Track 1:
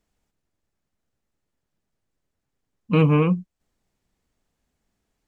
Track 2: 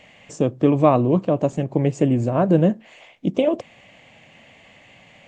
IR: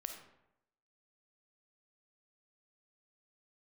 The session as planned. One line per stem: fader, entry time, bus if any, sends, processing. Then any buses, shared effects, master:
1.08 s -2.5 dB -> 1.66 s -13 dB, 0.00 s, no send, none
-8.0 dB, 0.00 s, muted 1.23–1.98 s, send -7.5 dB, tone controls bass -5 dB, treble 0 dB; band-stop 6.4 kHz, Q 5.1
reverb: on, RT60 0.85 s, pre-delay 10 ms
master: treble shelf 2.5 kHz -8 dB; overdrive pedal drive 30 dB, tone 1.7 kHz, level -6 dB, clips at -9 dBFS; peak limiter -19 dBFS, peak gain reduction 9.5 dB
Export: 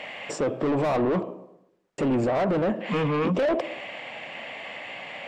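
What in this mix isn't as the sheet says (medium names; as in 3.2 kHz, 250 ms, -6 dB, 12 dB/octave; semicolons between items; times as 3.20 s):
stem 2: send -7.5 dB -> -14 dB; master: missing treble shelf 2.5 kHz -8 dB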